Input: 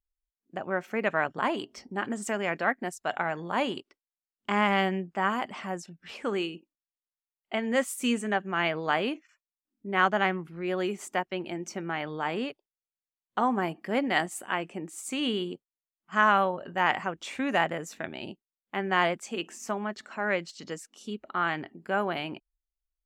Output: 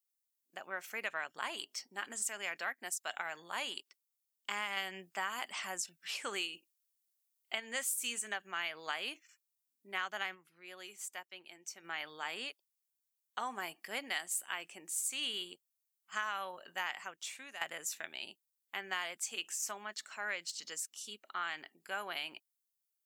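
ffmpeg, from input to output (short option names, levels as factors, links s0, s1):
-filter_complex "[0:a]asplit=6[s0][s1][s2][s3][s4][s5];[s0]atrim=end=4.772[s6];[s1]atrim=start=4.768:end=7.602,asetpts=PTS-STARTPTS,volume=1.58[s7];[s2]atrim=start=7.598:end=10.49,asetpts=PTS-STARTPTS,afade=t=out:st=2.742:d=0.15:c=exp:silence=0.375837[s8];[s3]atrim=start=10.49:end=11.7,asetpts=PTS-STARTPTS,volume=0.376[s9];[s4]atrim=start=11.7:end=17.61,asetpts=PTS-STARTPTS,afade=t=in:d=0.15:c=exp:silence=0.375837,afade=t=out:st=5.1:d=0.81:silence=0.16788[s10];[s5]atrim=start=17.61,asetpts=PTS-STARTPTS,afade=t=in:d=0.004:c=hsin:silence=0.16788[s11];[s6][s7]acrossfade=d=0.004:c1=hsin:c2=hsin[s12];[s8][s9][s10][s11]concat=n=4:v=0:a=1[s13];[s12][s13]acrossfade=d=0.004:c1=hsin:c2=hsin,aderivative,acompressor=threshold=0.01:ratio=6,volume=2.24"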